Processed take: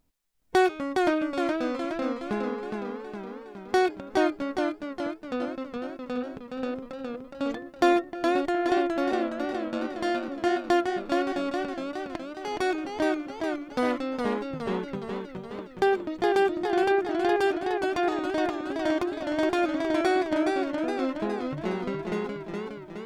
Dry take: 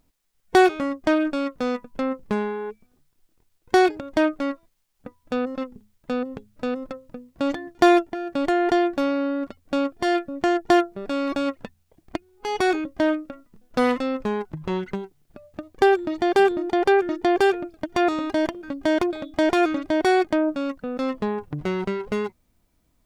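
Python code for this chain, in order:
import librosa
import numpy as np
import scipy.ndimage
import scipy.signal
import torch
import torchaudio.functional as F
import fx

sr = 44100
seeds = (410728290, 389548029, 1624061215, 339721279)

y = fx.ring_mod(x, sr, carrier_hz=48.0, at=(9.11, 9.89))
y = fx.echo_warbled(y, sr, ms=416, feedback_pct=59, rate_hz=2.8, cents=84, wet_db=-4.0)
y = y * 10.0 ** (-6.0 / 20.0)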